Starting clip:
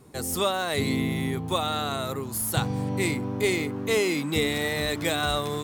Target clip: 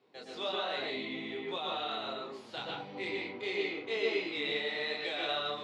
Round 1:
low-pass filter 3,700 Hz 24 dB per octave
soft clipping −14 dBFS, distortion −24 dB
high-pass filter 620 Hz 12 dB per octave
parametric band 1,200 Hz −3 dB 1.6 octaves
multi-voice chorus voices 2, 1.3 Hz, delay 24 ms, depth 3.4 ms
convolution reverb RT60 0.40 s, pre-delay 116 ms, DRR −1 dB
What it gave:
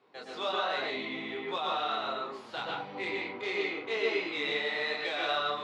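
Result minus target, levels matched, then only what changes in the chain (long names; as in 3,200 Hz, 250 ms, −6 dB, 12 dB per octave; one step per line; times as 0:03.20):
soft clipping: distortion +14 dB; 1,000 Hz band +3.0 dB
change: soft clipping −6 dBFS, distortion −39 dB
change: parametric band 1,200 Hz −11.5 dB 1.6 octaves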